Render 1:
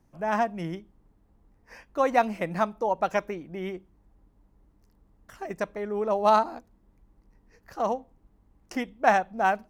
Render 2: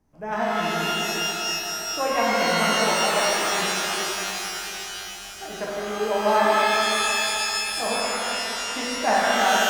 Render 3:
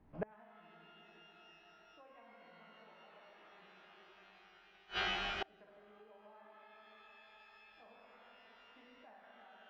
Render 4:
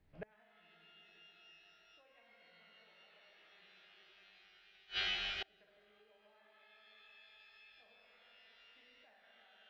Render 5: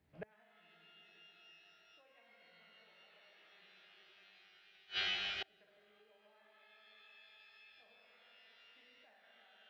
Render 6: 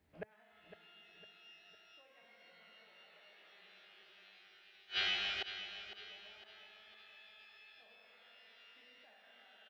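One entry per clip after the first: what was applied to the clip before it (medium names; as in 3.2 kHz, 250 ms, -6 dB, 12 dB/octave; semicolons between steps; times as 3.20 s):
hum notches 50/100/150/200 Hz; pitch-shifted reverb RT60 3.6 s, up +12 st, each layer -2 dB, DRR -6.5 dB; trim -4.5 dB
low-pass 3.2 kHz 24 dB/octave; compression 6:1, threshold -29 dBFS, peak gain reduction 13 dB; inverted gate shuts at -27 dBFS, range -31 dB; trim +2 dB
graphic EQ 250/1000/2000/4000 Hz -9/-10/+4/+9 dB; trim -4 dB
high-pass 80 Hz 12 dB/octave
peaking EQ 140 Hz -14.5 dB 0.24 oct; on a send: feedback delay 506 ms, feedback 45%, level -11 dB; on the sum: trim +2 dB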